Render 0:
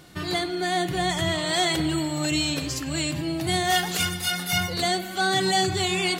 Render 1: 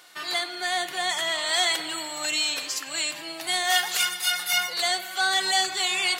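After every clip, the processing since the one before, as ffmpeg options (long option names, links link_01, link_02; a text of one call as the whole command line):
ffmpeg -i in.wav -af "highpass=870,volume=2dB" out.wav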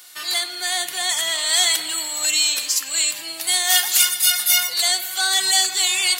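ffmpeg -i in.wav -af "crystalizer=i=4.5:c=0,volume=-3dB" out.wav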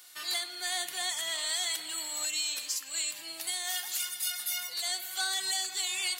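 ffmpeg -i in.wav -af "alimiter=limit=-11.5dB:level=0:latency=1:release=438,volume=-9dB" out.wav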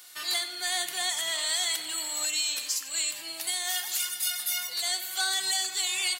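ffmpeg -i in.wav -af "aecho=1:1:90:0.168,volume=3.5dB" out.wav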